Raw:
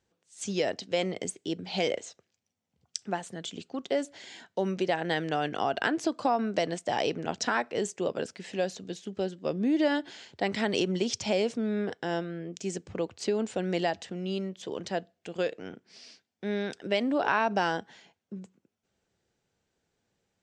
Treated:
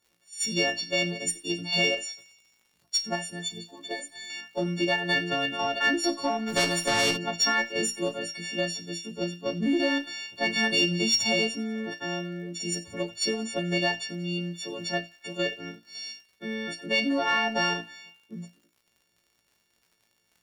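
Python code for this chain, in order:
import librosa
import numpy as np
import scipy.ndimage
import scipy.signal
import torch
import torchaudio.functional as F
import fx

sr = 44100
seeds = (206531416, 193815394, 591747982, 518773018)

p1 = fx.freq_snap(x, sr, grid_st=4)
p2 = fx.level_steps(p1, sr, step_db=14)
p3 = p1 + (p2 * 10.0 ** (-1.0 / 20.0))
p4 = fx.notch_comb(p3, sr, f0_hz=280.0, at=(3.39, 4.3))
p5 = fx.cheby_harmonics(p4, sr, harmonics=(4, 5), levels_db=(-32, -29), full_scale_db=-7.5)
p6 = fx.dmg_crackle(p5, sr, seeds[0], per_s=93.0, level_db=-44.0)
p7 = fx.comb_fb(p6, sr, f0_hz=57.0, decay_s=0.22, harmonics='all', damping=0.0, mix_pct=90)
p8 = p7 + fx.echo_wet_highpass(p7, sr, ms=91, feedback_pct=62, hz=2000.0, wet_db=-19.5, dry=0)
y = fx.spectral_comp(p8, sr, ratio=2.0, at=(6.46, 7.16), fade=0.02)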